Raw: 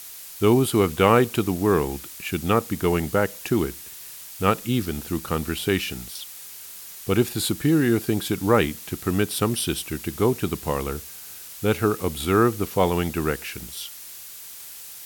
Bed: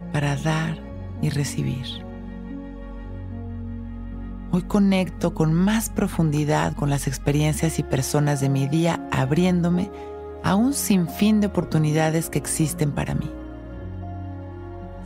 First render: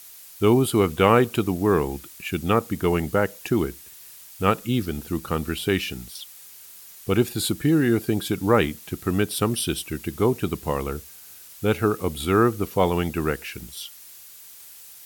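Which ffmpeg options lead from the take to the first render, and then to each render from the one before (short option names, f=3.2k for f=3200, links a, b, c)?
-af "afftdn=nr=6:nf=-40"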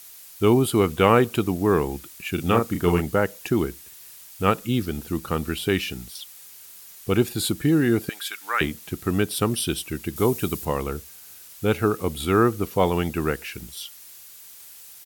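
-filter_complex "[0:a]asplit=3[a][b][c];[a]afade=t=out:st=2.37:d=0.02[d];[b]asplit=2[e][f];[f]adelay=34,volume=-4.5dB[g];[e][g]amix=inputs=2:normalize=0,afade=t=in:st=2.37:d=0.02,afade=t=out:st=3:d=0.02[h];[c]afade=t=in:st=3:d=0.02[i];[d][h][i]amix=inputs=3:normalize=0,asettb=1/sr,asplit=3[j][k][l];[j]atrim=end=8.094[m];[k]atrim=start=8.09:end=8.61,asetpts=PTS-STARTPTS,afade=t=in:d=0.004:c=qsin,afade=t=out:st=0.516:d=0.004:c=qsin,highpass=f=1.6k:t=q:w=1.6[n];[l]atrim=start=8.606[o];[m][n]acrossfade=d=0.004:c1=hsin:c2=qsin[p];[p][o]acrossfade=d=0.004:c1=qsin:c2=hsin,asettb=1/sr,asplit=3[q][r][s];[q]atrim=end=10.164[t];[r]atrim=start=10.16:end=10.65,asetpts=PTS-STARTPTS,afade=t=in:d=0.004:c=qsin,afade=t=out:st=0.486:d=0.004:c=qsin,aemphasis=mode=production:type=cd[u];[s]atrim=start=10.646[v];[t][u]acrossfade=d=0.004:c1=hsin:c2=qsin[w];[w][v]acrossfade=d=0.004:c1=qsin:c2=hsin"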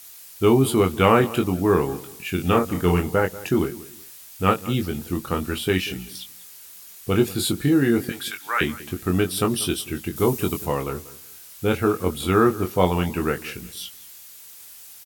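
-filter_complex "[0:a]asplit=2[a][b];[b]adelay=22,volume=-5.5dB[c];[a][c]amix=inputs=2:normalize=0,asplit=2[d][e];[e]adelay=189,lowpass=f=3.8k:p=1,volume=-18dB,asplit=2[f][g];[g]adelay=189,lowpass=f=3.8k:p=1,volume=0.25[h];[d][f][h]amix=inputs=3:normalize=0"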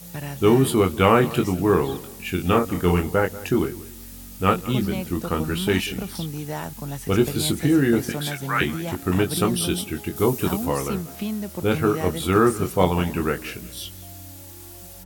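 -filter_complex "[1:a]volume=-10dB[a];[0:a][a]amix=inputs=2:normalize=0"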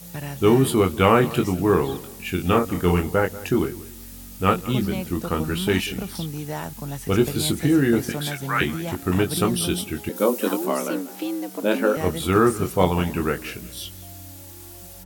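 -filter_complex "[0:a]asettb=1/sr,asplit=3[a][b][c];[a]atrim=end=10.094[d];[b]atrim=start=10.09:end=11.97,asetpts=PTS-STARTPTS,afade=t=in:d=0.004:c=qsin,afade=t=out:st=1.876:d=0.004:c=qsin,afreqshift=110[e];[c]atrim=start=11.966[f];[d][e]acrossfade=d=0.004:c1=hsin:c2=qsin[g];[g][f]acrossfade=d=0.004:c1=qsin:c2=hsin"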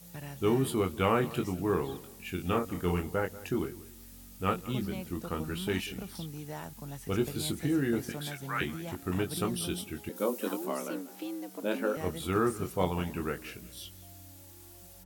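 -af "volume=-10.5dB"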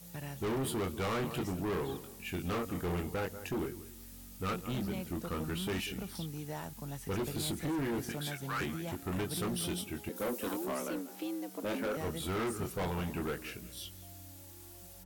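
-af "volume=31.5dB,asoftclip=hard,volume=-31.5dB"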